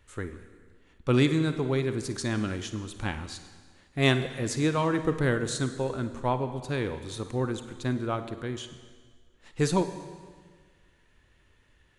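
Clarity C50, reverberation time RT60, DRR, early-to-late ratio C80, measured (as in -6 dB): 10.0 dB, 1.6 s, 9.5 dB, 12.5 dB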